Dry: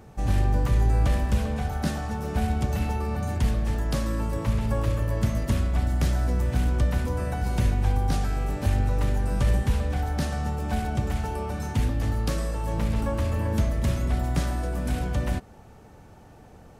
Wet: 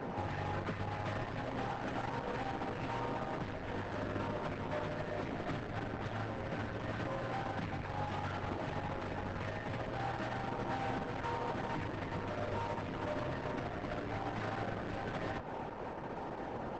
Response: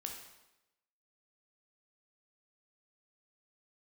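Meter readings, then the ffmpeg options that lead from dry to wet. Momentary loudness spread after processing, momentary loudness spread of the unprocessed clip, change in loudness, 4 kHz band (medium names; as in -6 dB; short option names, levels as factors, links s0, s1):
2 LU, 5 LU, -13.0 dB, -9.0 dB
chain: -filter_complex "[0:a]lowpass=f=5300:w=0.5412,lowpass=f=5300:w=1.3066,bandreject=f=1100:w=14,acrossover=split=2700[s0][s1];[s1]acompressor=threshold=0.002:ratio=4:attack=1:release=60[s2];[s0][s2]amix=inputs=2:normalize=0,highshelf=f=3000:g=-8,acrossover=split=1100[s3][s4];[s3]alimiter=level_in=1.06:limit=0.0631:level=0:latency=1:release=74,volume=0.944[s5];[s5][s4]amix=inputs=2:normalize=0,acompressor=threshold=0.02:ratio=16,aeval=exprs='0.0398*(cos(1*acos(clip(val(0)/0.0398,-1,1)))-cos(1*PI/2))+0.00158*(cos(2*acos(clip(val(0)/0.0398,-1,1)))-cos(2*PI/2))+0.00447*(cos(3*acos(clip(val(0)/0.0398,-1,1)))-cos(3*PI/2))+0.000891*(cos(6*acos(clip(val(0)/0.0398,-1,1)))-cos(6*PI/2))+0.000282*(cos(8*acos(clip(val(0)/0.0398,-1,1)))-cos(8*PI/2))':c=same,afreqshift=46,asplit=2[s6][s7];[s7]highpass=f=720:p=1,volume=22.4,asoftclip=type=tanh:threshold=0.0376[s8];[s6][s8]amix=inputs=2:normalize=0,lowpass=f=1300:p=1,volume=0.501,aeval=exprs='clip(val(0),-1,0.00944)':c=same,volume=1.26" -ar 48000 -c:a libopus -b:a 10k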